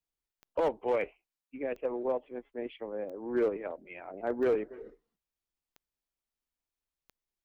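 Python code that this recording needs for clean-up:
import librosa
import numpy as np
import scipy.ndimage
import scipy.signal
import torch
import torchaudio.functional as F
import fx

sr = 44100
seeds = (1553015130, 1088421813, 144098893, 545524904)

y = fx.fix_declip(x, sr, threshold_db=-21.5)
y = fx.fix_declick_ar(y, sr, threshold=10.0)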